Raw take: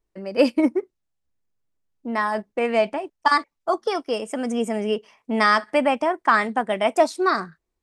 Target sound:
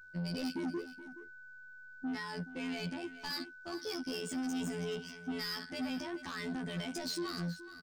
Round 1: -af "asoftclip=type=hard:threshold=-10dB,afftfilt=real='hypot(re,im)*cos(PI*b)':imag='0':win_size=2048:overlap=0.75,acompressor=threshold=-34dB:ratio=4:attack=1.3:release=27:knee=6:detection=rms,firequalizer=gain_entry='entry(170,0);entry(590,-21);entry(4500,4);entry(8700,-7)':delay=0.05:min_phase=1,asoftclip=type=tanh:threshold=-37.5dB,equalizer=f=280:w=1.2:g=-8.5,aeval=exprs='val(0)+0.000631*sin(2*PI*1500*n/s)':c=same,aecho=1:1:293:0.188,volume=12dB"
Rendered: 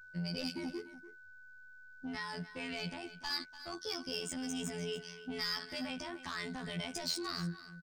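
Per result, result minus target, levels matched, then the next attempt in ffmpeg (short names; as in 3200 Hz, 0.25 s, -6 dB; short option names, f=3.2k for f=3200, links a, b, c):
echo 0.131 s early; soft clip: distortion -7 dB; 250 Hz band -3.5 dB
-af "asoftclip=type=hard:threshold=-10dB,afftfilt=real='hypot(re,im)*cos(PI*b)':imag='0':win_size=2048:overlap=0.75,acompressor=threshold=-34dB:ratio=4:attack=1.3:release=27:knee=6:detection=rms,firequalizer=gain_entry='entry(170,0);entry(590,-21);entry(4500,4);entry(8700,-7)':delay=0.05:min_phase=1,asoftclip=type=tanh:threshold=-37.5dB,equalizer=f=280:w=1.2:g=-8.5,aeval=exprs='val(0)+0.000631*sin(2*PI*1500*n/s)':c=same,aecho=1:1:424:0.188,volume=12dB"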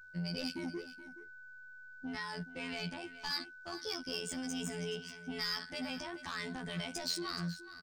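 soft clip: distortion -7 dB; 250 Hz band -3.5 dB
-af "asoftclip=type=hard:threshold=-10dB,afftfilt=real='hypot(re,im)*cos(PI*b)':imag='0':win_size=2048:overlap=0.75,acompressor=threshold=-34dB:ratio=4:attack=1.3:release=27:knee=6:detection=rms,firequalizer=gain_entry='entry(170,0);entry(590,-21);entry(4500,4);entry(8700,-7)':delay=0.05:min_phase=1,asoftclip=type=tanh:threshold=-45dB,equalizer=f=280:w=1.2:g=-8.5,aeval=exprs='val(0)+0.000631*sin(2*PI*1500*n/s)':c=same,aecho=1:1:424:0.188,volume=12dB"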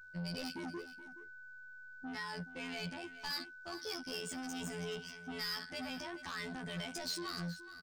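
250 Hz band -3.5 dB
-af "asoftclip=type=hard:threshold=-10dB,afftfilt=real='hypot(re,im)*cos(PI*b)':imag='0':win_size=2048:overlap=0.75,acompressor=threshold=-34dB:ratio=4:attack=1.3:release=27:knee=6:detection=rms,firequalizer=gain_entry='entry(170,0);entry(590,-21);entry(4500,4);entry(8700,-7)':delay=0.05:min_phase=1,asoftclip=type=tanh:threshold=-45dB,aeval=exprs='val(0)+0.000631*sin(2*PI*1500*n/s)':c=same,aecho=1:1:424:0.188,volume=12dB"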